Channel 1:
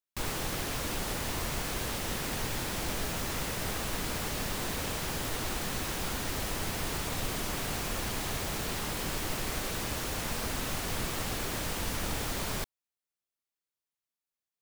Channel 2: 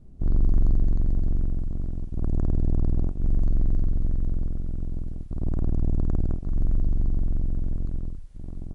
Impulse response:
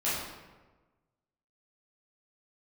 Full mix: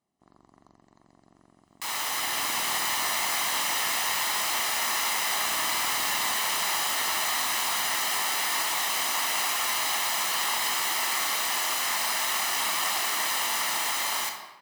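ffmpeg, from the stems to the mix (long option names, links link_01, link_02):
-filter_complex "[0:a]adelay=1650,volume=-5dB,asplit=2[link_01][link_02];[link_02]volume=-7.5dB[link_03];[1:a]volume=-8dB,asplit=2[link_04][link_05];[link_05]volume=-21.5dB[link_06];[2:a]atrim=start_sample=2205[link_07];[link_03][link_06]amix=inputs=2:normalize=0[link_08];[link_08][link_07]afir=irnorm=-1:irlink=0[link_09];[link_01][link_04][link_09]amix=inputs=3:normalize=0,highpass=820,aecho=1:1:1:0.52,dynaudnorm=framelen=220:gausssize=17:maxgain=9.5dB"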